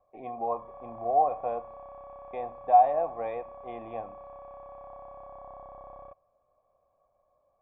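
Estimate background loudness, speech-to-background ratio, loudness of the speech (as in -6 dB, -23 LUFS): -47.0 LUFS, 19.5 dB, -27.5 LUFS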